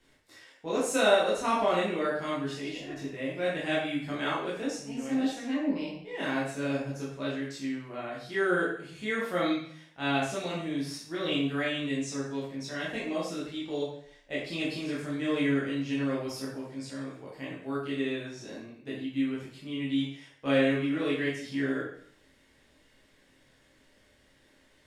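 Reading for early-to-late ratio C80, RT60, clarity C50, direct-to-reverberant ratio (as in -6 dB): 6.5 dB, 0.55 s, 2.5 dB, -7.5 dB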